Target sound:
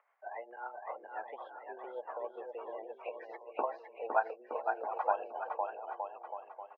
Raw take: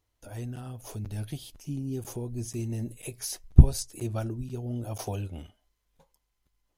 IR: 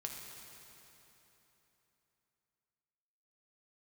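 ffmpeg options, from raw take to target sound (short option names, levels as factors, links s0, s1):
-filter_complex "[0:a]afftdn=nr=30:nf=-47,acompressor=mode=upward:threshold=0.00501:ratio=2.5,highpass=f=540:t=q:w=0.5412,highpass=f=540:t=q:w=1.307,lowpass=f=2000:t=q:w=0.5176,lowpass=f=2000:t=q:w=0.7071,lowpass=f=2000:t=q:w=1.932,afreqshift=110,tremolo=f=7.4:d=0.54,asplit=2[s0][s1];[s1]aecho=0:1:510|918|1244|1506|1714:0.631|0.398|0.251|0.158|0.1[s2];[s0][s2]amix=inputs=2:normalize=0,volume=3.35"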